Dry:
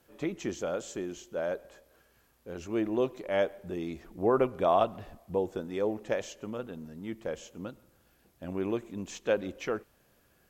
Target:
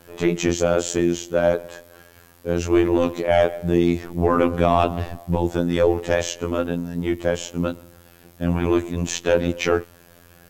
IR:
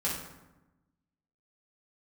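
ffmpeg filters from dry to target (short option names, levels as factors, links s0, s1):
-af "apsyclip=29.9,equalizer=f=120:t=o:w=0.43:g=8,afftfilt=real='hypot(re,im)*cos(PI*b)':imag='0':win_size=2048:overlap=0.75,volume=0.316"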